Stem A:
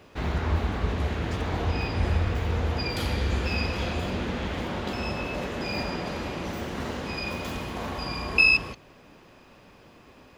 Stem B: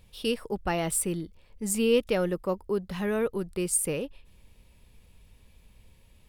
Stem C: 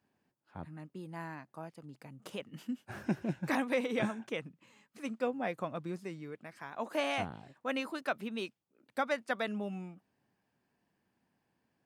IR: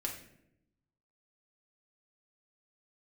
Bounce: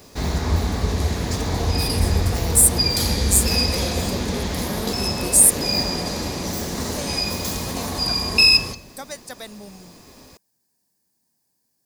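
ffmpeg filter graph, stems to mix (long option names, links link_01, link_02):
-filter_complex "[0:a]bass=frequency=250:gain=2,treble=frequency=4000:gain=-8,volume=1.5dB,asplit=2[link_01][link_02];[link_02]volume=-8dB[link_03];[1:a]alimiter=limit=-23.5dB:level=0:latency=1,adelay=1650,volume=-2dB[link_04];[2:a]volume=-3dB[link_05];[3:a]atrim=start_sample=2205[link_06];[link_03][link_06]afir=irnorm=-1:irlink=0[link_07];[link_01][link_04][link_05][link_07]amix=inputs=4:normalize=0,equalizer=frequency=1400:width=4.2:gain=-5.5,aexciter=amount=6.7:drive=8.5:freq=4300"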